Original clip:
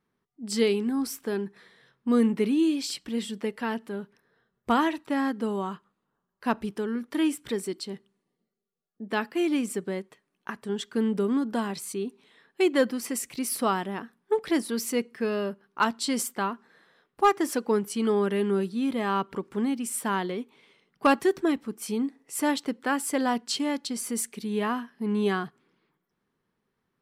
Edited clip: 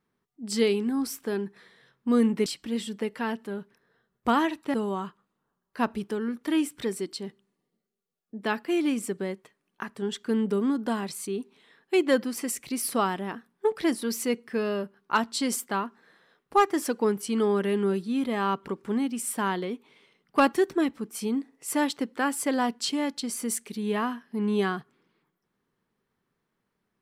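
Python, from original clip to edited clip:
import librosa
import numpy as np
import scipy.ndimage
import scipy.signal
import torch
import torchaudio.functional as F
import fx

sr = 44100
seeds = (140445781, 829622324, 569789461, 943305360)

y = fx.edit(x, sr, fx.cut(start_s=2.46, length_s=0.42),
    fx.cut(start_s=5.16, length_s=0.25), tone=tone)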